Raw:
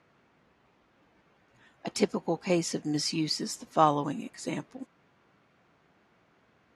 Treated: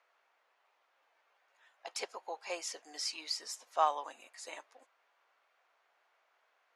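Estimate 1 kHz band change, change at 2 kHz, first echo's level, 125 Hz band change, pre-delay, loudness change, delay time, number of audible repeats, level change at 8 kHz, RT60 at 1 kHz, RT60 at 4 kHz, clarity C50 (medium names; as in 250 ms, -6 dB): -6.0 dB, -5.5 dB, no echo, under -40 dB, no reverb, -8.0 dB, no echo, no echo, -5.5 dB, no reverb, no reverb, no reverb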